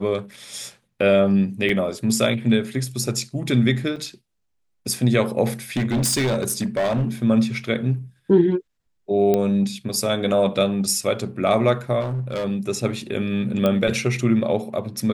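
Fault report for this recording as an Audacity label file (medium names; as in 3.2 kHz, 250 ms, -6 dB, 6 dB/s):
1.690000	1.690000	dropout 3.8 ms
3.960000	3.970000	dropout 5.1 ms
5.760000	7.080000	clipped -17.5 dBFS
9.340000	9.340000	pop -8 dBFS
12.000000	12.450000	clipped -22 dBFS
13.660000	13.660000	pop -9 dBFS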